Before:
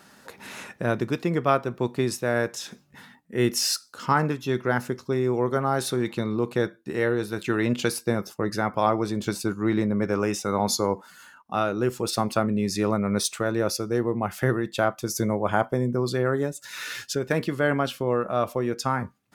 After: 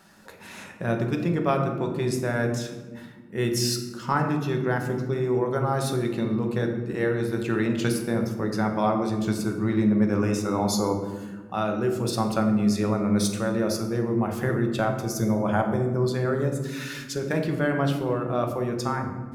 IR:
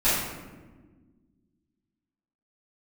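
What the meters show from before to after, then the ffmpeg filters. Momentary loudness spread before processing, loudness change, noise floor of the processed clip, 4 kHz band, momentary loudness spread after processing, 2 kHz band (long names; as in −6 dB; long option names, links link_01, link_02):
6 LU, 0.0 dB, −43 dBFS, −3.0 dB, 7 LU, −2.0 dB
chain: -filter_complex "[0:a]asplit=2[link_01][link_02];[1:a]atrim=start_sample=2205,lowshelf=frequency=400:gain=8[link_03];[link_02][link_03]afir=irnorm=-1:irlink=0,volume=-19dB[link_04];[link_01][link_04]amix=inputs=2:normalize=0,volume=-4.5dB"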